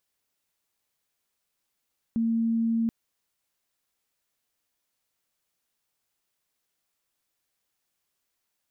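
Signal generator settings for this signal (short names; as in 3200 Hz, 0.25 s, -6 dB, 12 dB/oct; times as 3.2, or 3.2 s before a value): tone sine 228 Hz -22 dBFS 0.73 s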